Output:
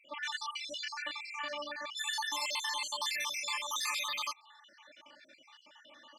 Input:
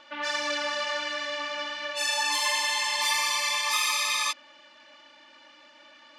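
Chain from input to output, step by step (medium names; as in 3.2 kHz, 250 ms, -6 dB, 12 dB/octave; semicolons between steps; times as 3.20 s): random holes in the spectrogram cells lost 60%; in parallel at +2 dB: compression, threshold -38 dBFS, peak gain reduction 12.5 dB; on the sum: trim -8.5 dB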